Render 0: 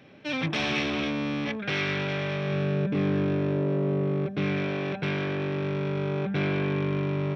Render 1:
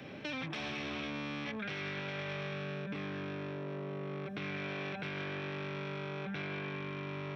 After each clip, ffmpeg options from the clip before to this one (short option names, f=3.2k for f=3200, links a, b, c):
-filter_complex "[0:a]acompressor=threshold=-29dB:ratio=6,alimiter=level_in=5dB:limit=-24dB:level=0:latency=1:release=60,volume=-5dB,acrossover=split=170|800|1600[a][b][c][d];[a]acompressor=threshold=-55dB:ratio=4[e];[b]acompressor=threshold=-50dB:ratio=4[f];[c]acompressor=threshold=-53dB:ratio=4[g];[d]acompressor=threshold=-48dB:ratio=4[h];[e][f][g][h]amix=inputs=4:normalize=0,volume=5.5dB"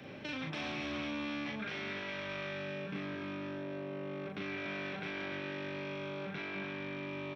-af "aecho=1:1:37.9|288.6:0.708|0.447,volume=-2.5dB"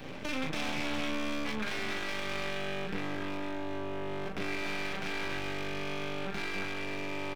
-filter_complex "[0:a]aeval=exprs='max(val(0),0)':c=same,asplit=2[a][b];[b]adelay=23,volume=-12dB[c];[a][c]amix=inputs=2:normalize=0,volume=8.5dB"